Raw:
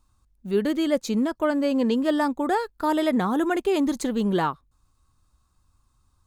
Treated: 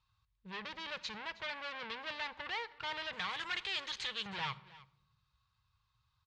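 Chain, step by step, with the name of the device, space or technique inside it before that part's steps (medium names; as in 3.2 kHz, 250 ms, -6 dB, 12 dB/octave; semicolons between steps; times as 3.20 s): 3.13–4.26 s: tilt EQ +4.5 dB/octave; scooped metal amplifier (valve stage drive 33 dB, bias 0.8; cabinet simulation 97–3900 Hz, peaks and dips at 120 Hz +7 dB, 260 Hz -7 dB, 680 Hz -8 dB, 1.3 kHz -4 dB; amplifier tone stack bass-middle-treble 10-0-10); delay 316 ms -19.5 dB; simulated room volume 3000 m³, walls furnished, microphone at 0.58 m; trim +8 dB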